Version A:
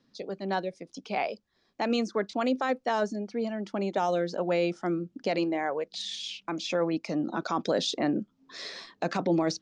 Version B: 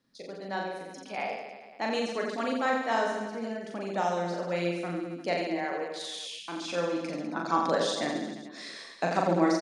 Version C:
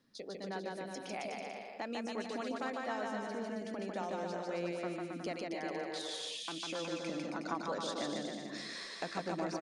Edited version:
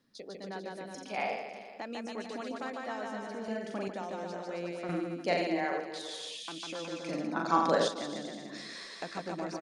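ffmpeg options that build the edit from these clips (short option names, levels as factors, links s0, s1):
-filter_complex "[1:a]asplit=4[s0][s1][s2][s3];[2:a]asplit=5[s4][s5][s6][s7][s8];[s4]atrim=end=0.952[s9];[s0]atrim=start=0.948:end=1.532[s10];[s5]atrim=start=1.528:end=3.482[s11];[s1]atrim=start=3.478:end=3.882[s12];[s6]atrim=start=3.878:end=4.892[s13];[s2]atrim=start=4.888:end=5.802[s14];[s7]atrim=start=5.798:end=7.092[s15];[s3]atrim=start=7.088:end=7.882[s16];[s8]atrim=start=7.878[s17];[s9][s10]acrossfade=d=0.004:c1=hsin:c2=hsin[s18];[s18][s11]acrossfade=d=0.004:c1=hsin:c2=hsin[s19];[s19][s12]acrossfade=d=0.004:c1=hsin:c2=hsin[s20];[s20][s13]acrossfade=d=0.004:c1=hsin:c2=hsin[s21];[s21][s14]acrossfade=d=0.004:c1=hsin:c2=hsin[s22];[s22][s15]acrossfade=d=0.004:c1=hsin:c2=hsin[s23];[s23][s16]acrossfade=d=0.004:c1=hsin:c2=hsin[s24];[s24][s17]acrossfade=d=0.004:c1=hsin:c2=hsin"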